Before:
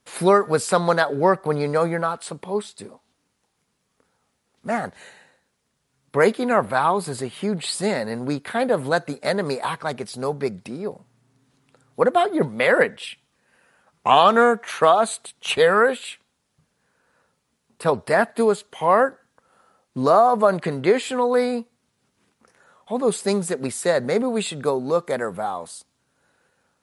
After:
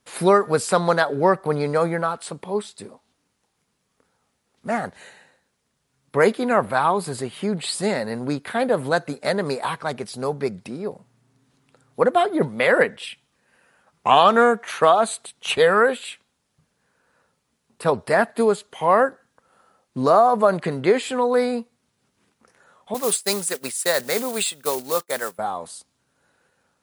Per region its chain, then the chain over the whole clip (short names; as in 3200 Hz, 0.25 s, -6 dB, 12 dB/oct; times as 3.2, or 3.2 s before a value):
22.94–25.39 block floating point 5-bit + expander -25 dBFS + tilt +3.5 dB/oct
whole clip: dry